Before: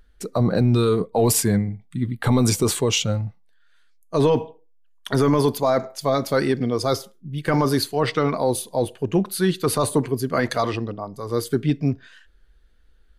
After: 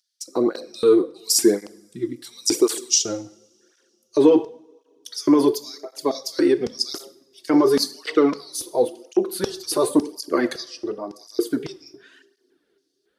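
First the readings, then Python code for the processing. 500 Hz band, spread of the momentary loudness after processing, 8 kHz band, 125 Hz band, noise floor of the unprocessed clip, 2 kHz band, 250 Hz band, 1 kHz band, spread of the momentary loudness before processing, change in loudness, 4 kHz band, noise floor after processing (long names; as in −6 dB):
+1.0 dB, 14 LU, +2.5 dB, −19.5 dB, −55 dBFS, −5.0 dB, +1.0 dB, −5.0 dB, 10 LU, +0.5 dB, +2.0 dB, −70 dBFS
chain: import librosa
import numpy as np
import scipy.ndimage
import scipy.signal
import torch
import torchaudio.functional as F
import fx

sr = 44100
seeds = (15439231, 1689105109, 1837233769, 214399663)

y = fx.filter_lfo_highpass(x, sr, shape='square', hz=1.8, low_hz=340.0, high_hz=5300.0, q=4.8)
y = fx.rev_double_slope(y, sr, seeds[0], early_s=0.58, late_s=3.5, knee_db=-27, drr_db=12.5)
y = fx.flanger_cancel(y, sr, hz=0.93, depth_ms=5.2)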